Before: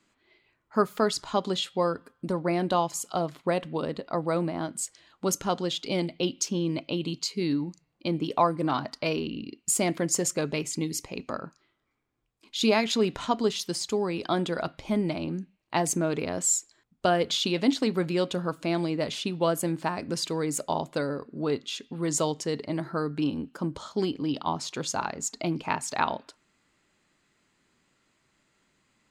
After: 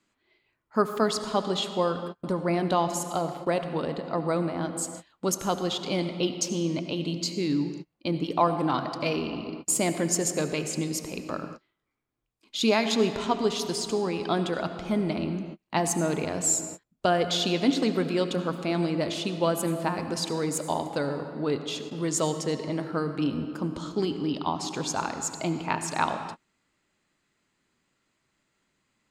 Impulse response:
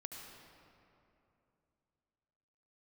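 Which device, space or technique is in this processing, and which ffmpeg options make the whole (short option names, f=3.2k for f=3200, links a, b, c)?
keyed gated reverb: -filter_complex "[0:a]asplit=3[a][b][c];[1:a]atrim=start_sample=2205[d];[b][d]afir=irnorm=-1:irlink=0[e];[c]apad=whole_len=1283557[f];[e][f]sidechaingate=range=-47dB:threshold=-48dB:ratio=16:detection=peak,volume=2.5dB[g];[a][g]amix=inputs=2:normalize=0,volume=-4.5dB"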